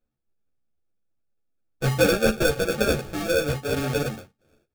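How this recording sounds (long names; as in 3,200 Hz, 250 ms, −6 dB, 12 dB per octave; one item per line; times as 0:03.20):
aliases and images of a low sample rate 1,000 Hz, jitter 0%
a shimmering, thickened sound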